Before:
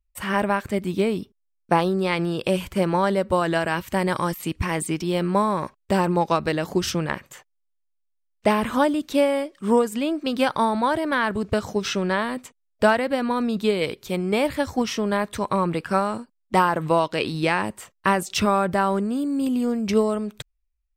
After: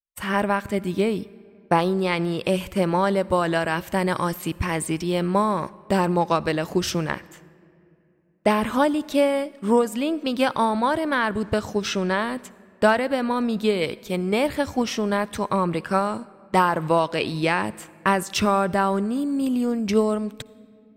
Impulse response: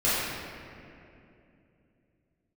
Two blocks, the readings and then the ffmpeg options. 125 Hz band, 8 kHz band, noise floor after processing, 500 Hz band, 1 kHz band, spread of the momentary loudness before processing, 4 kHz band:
0.0 dB, 0.0 dB, -55 dBFS, 0.0 dB, 0.0 dB, 6 LU, 0.0 dB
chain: -filter_complex "[0:a]agate=range=0.0224:threshold=0.0141:ratio=3:detection=peak,asplit=2[s0][s1];[1:a]atrim=start_sample=2205,highshelf=f=9700:g=10.5,adelay=54[s2];[s1][s2]afir=irnorm=-1:irlink=0,volume=0.015[s3];[s0][s3]amix=inputs=2:normalize=0"

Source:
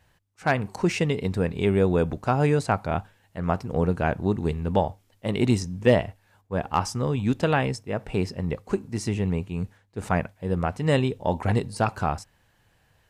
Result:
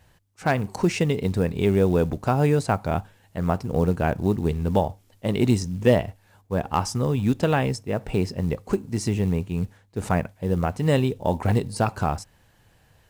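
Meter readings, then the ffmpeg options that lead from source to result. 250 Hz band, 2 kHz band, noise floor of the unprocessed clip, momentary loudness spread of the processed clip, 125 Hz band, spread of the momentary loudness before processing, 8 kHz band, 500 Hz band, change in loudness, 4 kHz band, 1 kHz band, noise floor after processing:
+2.0 dB, -1.0 dB, -65 dBFS, 8 LU, +2.5 dB, 9 LU, +2.5 dB, +1.0 dB, +1.5 dB, +0.5 dB, 0.0 dB, -60 dBFS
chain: -filter_complex "[0:a]equalizer=f=1800:t=o:w=2.4:g=-3.5,asplit=2[s0][s1];[s1]acompressor=threshold=0.0251:ratio=5,volume=1[s2];[s0][s2]amix=inputs=2:normalize=0,acrusher=bits=8:mode=log:mix=0:aa=0.000001"

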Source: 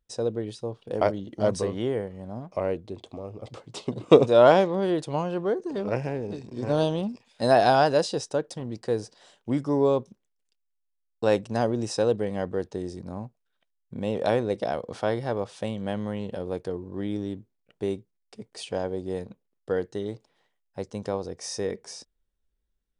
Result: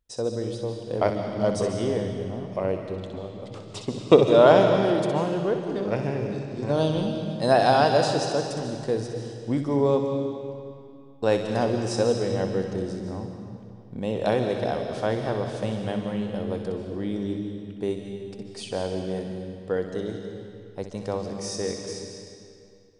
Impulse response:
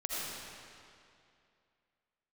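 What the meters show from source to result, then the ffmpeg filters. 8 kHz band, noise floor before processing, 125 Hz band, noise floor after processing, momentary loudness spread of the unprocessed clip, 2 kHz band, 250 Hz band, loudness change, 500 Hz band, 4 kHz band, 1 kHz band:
+2.0 dB, -76 dBFS, +3.5 dB, -46 dBFS, 18 LU, +1.5 dB, +2.0 dB, +1.0 dB, +1.5 dB, +2.5 dB, +1.0 dB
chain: -filter_complex "[0:a]asplit=2[s0][s1];[s1]equalizer=f=5000:w=0.34:g=9.5[s2];[1:a]atrim=start_sample=2205,lowshelf=f=300:g=12,adelay=63[s3];[s2][s3]afir=irnorm=-1:irlink=0,volume=0.2[s4];[s0][s4]amix=inputs=2:normalize=0"

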